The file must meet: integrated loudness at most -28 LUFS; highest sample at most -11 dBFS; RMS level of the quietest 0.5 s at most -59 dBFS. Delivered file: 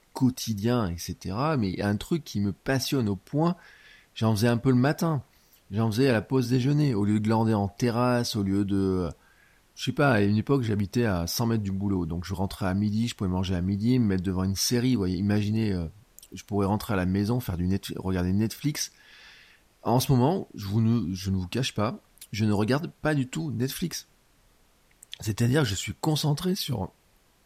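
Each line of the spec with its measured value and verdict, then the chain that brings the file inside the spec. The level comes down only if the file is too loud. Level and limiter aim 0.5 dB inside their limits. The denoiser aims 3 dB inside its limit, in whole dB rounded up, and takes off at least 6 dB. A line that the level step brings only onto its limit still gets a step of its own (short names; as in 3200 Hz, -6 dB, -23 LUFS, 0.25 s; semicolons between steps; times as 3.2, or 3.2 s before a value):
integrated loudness -26.5 LUFS: fail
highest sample -10.5 dBFS: fail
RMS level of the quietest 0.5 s -63 dBFS: OK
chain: gain -2 dB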